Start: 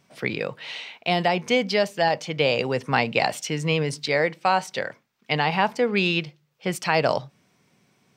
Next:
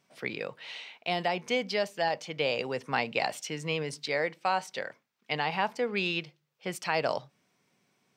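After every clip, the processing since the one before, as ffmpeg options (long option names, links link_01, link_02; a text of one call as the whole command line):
ffmpeg -i in.wav -af "lowshelf=frequency=140:gain=-11,volume=-7dB" out.wav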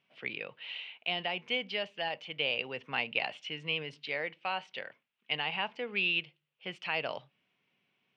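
ffmpeg -i in.wav -af "lowpass=frequency=2900:width_type=q:width=4.3,volume=-8.5dB" out.wav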